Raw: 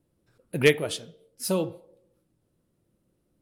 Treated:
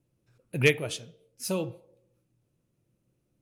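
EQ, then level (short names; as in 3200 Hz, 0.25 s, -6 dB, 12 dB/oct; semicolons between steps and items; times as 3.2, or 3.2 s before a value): thirty-one-band EQ 125 Hz +10 dB, 2500 Hz +7 dB, 6300 Hz +6 dB; -4.5 dB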